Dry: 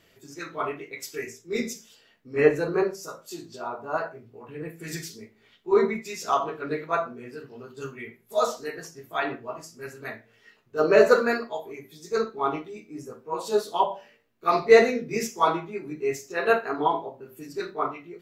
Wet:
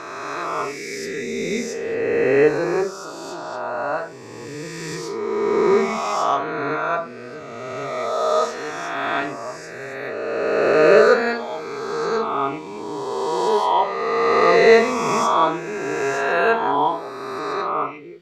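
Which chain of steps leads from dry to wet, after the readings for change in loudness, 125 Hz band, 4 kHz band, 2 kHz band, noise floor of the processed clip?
+5.0 dB, +4.5 dB, +7.0 dB, +7.0 dB, -35 dBFS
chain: spectral swells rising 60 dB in 2.67 s; LPF 6900 Hz 12 dB/oct

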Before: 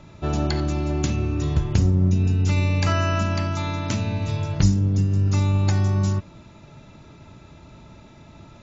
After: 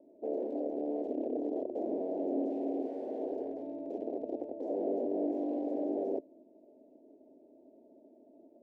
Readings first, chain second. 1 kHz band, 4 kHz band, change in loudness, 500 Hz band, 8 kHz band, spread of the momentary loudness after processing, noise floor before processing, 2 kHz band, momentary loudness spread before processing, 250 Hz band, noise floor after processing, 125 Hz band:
-13.5 dB, under -35 dB, -13.5 dB, -1.5 dB, n/a, 6 LU, -47 dBFS, under -35 dB, 6 LU, -9.0 dB, -61 dBFS, under -40 dB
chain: wrapped overs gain 18.5 dB; elliptic band-pass 260–660 Hz, stop band 40 dB; gain -5.5 dB

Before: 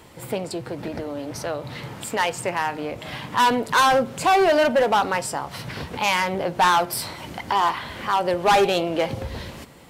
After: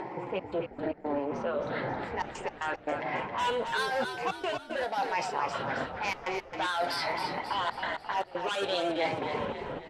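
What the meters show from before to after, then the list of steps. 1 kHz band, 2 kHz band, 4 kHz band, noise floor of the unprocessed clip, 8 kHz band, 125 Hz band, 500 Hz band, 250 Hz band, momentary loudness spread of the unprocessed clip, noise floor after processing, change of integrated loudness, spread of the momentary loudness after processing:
-10.5 dB, -8.0 dB, -8.5 dB, -40 dBFS, -16.0 dB, -10.5 dB, -9.5 dB, -9.0 dB, 15 LU, -49 dBFS, -10.0 dB, 5 LU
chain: moving spectral ripple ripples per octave 0.76, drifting +1 Hz, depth 9 dB; weighting filter A; low-pass opened by the level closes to 850 Hz, open at -13.5 dBFS; notch 1200 Hz, Q 13; in parallel at +0.5 dB: upward compressor, threshold -21 dBFS; on the sum: limiter -6.5 dBFS, peak gain reduction 7.5 dB; reverse; compressor, threshold -25 dBFS, peak gain reduction 13 dB; reverse; flange 0.24 Hz, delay 5.3 ms, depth 2.8 ms, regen -42%; step gate "xxx.x.x.xxxxxx" 115 bpm -24 dB; frequency-shifting echo 0.269 s, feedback 49%, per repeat -54 Hz, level -6.5 dB

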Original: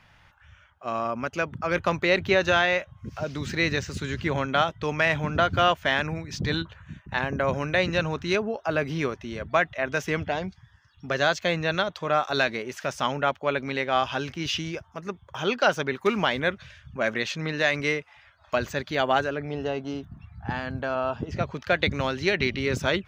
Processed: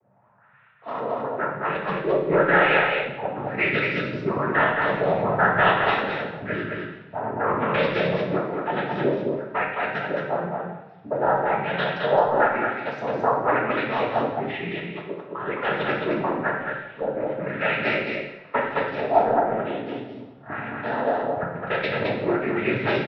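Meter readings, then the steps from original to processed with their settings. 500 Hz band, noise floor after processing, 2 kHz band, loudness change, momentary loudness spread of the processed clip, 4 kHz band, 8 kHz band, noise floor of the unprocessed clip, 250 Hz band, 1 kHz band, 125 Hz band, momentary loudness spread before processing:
+3.5 dB, -47 dBFS, +1.5 dB, +2.0 dB, 11 LU, -5.0 dB, under -25 dB, -58 dBFS, +2.0 dB, +4.5 dB, -1.0 dB, 10 LU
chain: HPF 180 Hz 6 dB/oct; high shelf 5200 Hz -10.5 dB; noise vocoder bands 12; added harmonics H 7 -22 dB, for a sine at -8 dBFS; soft clip -23.5 dBFS, distortion -7 dB; LFO low-pass saw up 1 Hz 480–6300 Hz; random-step tremolo; air absorption 340 m; on a send: echo 0.216 s -3.5 dB; on the sum: two-slope reverb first 0.82 s, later 2.9 s, from -24 dB, DRR -1 dB; gain +8 dB

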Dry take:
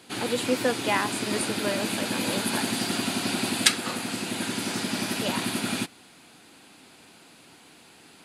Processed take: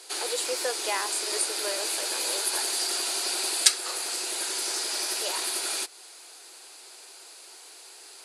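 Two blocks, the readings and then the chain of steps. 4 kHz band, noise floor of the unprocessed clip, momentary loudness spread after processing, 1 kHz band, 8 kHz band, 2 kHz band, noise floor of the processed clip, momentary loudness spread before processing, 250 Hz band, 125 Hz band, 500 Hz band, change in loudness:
+1.0 dB, -53 dBFS, 20 LU, -4.0 dB, +5.0 dB, -4.5 dB, -48 dBFS, 7 LU, -18.0 dB, under -40 dB, -4.5 dB, 0.0 dB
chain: elliptic high-pass 370 Hz, stop band 50 dB; band shelf 7000 Hz +10.5 dB; in parallel at +3 dB: compressor, threshold -33 dBFS, peak gain reduction 24 dB; on the sum: gain -7 dB

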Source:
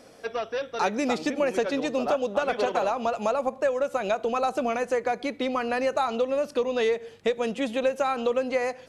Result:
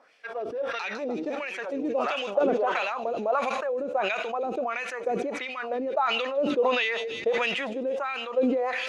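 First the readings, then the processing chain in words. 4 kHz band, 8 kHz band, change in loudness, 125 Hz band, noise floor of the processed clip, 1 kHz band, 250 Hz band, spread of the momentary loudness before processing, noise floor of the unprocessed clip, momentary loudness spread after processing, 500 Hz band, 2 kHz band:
+3.5 dB, -6.5 dB, -1.0 dB, n/a, -38 dBFS, -1.5 dB, -1.5 dB, 3 LU, -50 dBFS, 7 LU, -2.0 dB, +2.5 dB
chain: wah 1.5 Hz 310–2600 Hz, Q 2.7; thin delay 0.156 s, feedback 70%, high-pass 4700 Hz, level -7 dB; sustainer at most 26 dB/s; gain +2 dB

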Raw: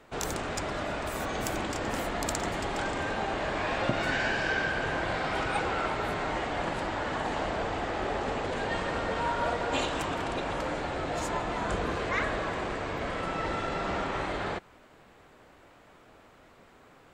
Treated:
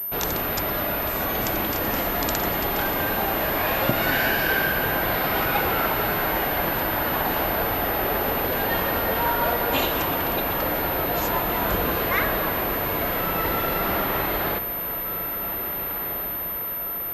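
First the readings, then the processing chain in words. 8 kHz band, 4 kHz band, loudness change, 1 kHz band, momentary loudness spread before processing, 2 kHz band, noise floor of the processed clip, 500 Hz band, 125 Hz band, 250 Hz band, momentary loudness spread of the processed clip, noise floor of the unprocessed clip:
+2.5 dB, +7.0 dB, +8.0 dB, +6.5 dB, 4 LU, +6.5 dB, -29 dBFS, +6.0 dB, +6.0 dB, +6.0 dB, 5 LU, -57 dBFS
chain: high shelf 4500 Hz +5 dB; diffused feedback echo 1.819 s, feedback 53%, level -10 dB; pulse-width modulation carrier 13000 Hz; gain +5.5 dB

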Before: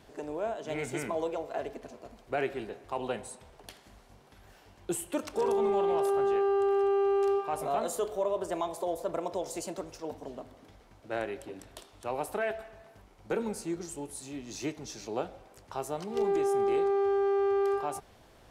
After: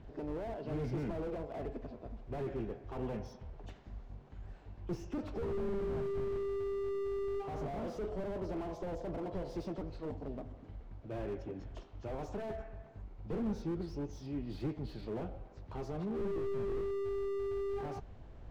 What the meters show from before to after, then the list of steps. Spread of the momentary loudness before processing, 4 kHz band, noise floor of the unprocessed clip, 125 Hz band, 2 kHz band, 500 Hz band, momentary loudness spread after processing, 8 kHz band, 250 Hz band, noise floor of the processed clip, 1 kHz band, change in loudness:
17 LU, -11.5 dB, -58 dBFS, +6.0 dB, -12.5 dB, -9.0 dB, 14 LU, under -20 dB, -3.0 dB, -54 dBFS, -13.5 dB, -8.0 dB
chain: nonlinear frequency compression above 2400 Hz 1.5:1; RIAA curve playback; slew limiter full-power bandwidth 11 Hz; gain -4.5 dB

